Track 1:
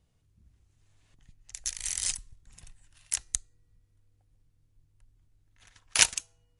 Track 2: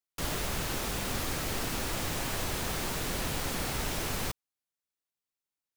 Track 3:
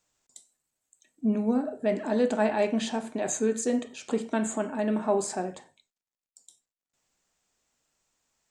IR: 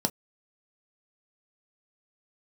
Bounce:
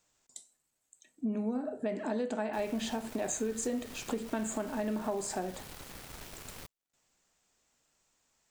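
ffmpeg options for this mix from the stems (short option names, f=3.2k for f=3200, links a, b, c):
-filter_complex "[1:a]acrusher=bits=4:mix=0:aa=0.5,adelay=2350,volume=-14.5dB[a];[2:a]acompressor=threshold=-24dB:ratio=6,volume=1.5dB[b];[a][b]amix=inputs=2:normalize=0,acompressor=threshold=-35dB:ratio=2"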